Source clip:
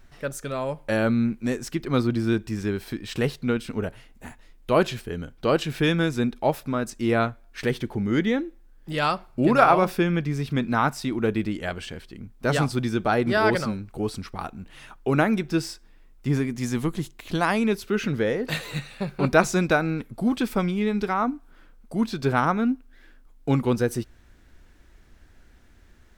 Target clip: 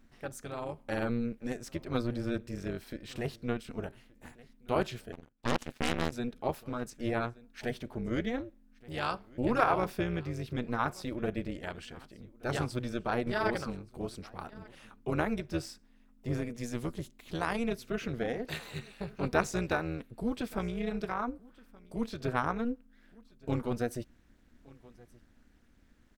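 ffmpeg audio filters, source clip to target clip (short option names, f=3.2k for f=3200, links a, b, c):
-filter_complex "[0:a]aecho=1:1:1174:0.0668,tremolo=f=240:d=0.824,asettb=1/sr,asplit=3[a][b][c];[a]atrim=end=5.124[d];[b]atrim=start=5.12:end=6.12,asetpts=PTS-STARTPTS,afade=t=in:d=0.004:c=qsin,afade=t=out:st=0.996:d=0.004:c=qsin,aeval=exprs='0.316*(cos(1*acos(clip(val(0)/0.316,-1,1)))-cos(1*PI/2))+0.0891*(cos(3*acos(clip(val(0)/0.316,-1,1)))-cos(3*PI/2))+0.141*(cos(6*acos(clip(val(0)/0.316,-1,1)))-cos(6*PI/2))+0.0501*(cos(8*acos(clip(val(0)/0.316,-1,1)))-cos(8*PI/2))':c=same[e];[c]atrim=start=6.116[f];[d][e]acrossfade=d=0.004:c1=hsin:c2=qsin[g];[g][f]acrossfade=d=0.004:c1=qsin:c2=hsin,volume=-6.5dB"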